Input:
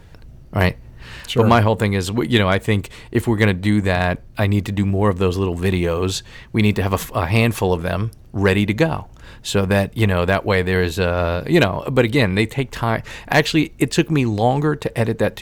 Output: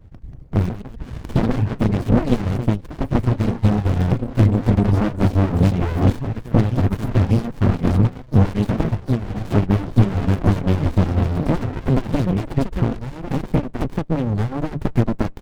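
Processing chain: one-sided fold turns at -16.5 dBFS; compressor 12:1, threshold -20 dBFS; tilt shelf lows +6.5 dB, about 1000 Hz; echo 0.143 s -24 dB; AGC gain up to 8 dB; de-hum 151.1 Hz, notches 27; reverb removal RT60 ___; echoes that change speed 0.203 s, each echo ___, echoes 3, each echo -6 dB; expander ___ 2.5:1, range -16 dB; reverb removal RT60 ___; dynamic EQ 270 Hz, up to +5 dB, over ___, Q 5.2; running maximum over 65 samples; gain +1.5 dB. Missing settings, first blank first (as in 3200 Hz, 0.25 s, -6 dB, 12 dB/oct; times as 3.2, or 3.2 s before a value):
0.81 s, +2 st, -30 dBFS, 0.79 s, -37 dBFS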